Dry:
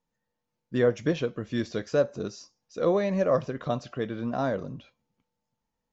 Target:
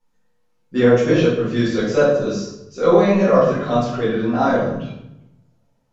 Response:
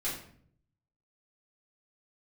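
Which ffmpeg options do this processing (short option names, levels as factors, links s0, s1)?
-filter_complex "[0:a]equalizer=f=96:t=o:w=1.9:g=-5.5[s0];[1:a]atrim=start_sample=2205,asetrate=27783,aresample=44100[s1];[s0][s1]afir=irnorm=-1:irlink=0,volume=1.58"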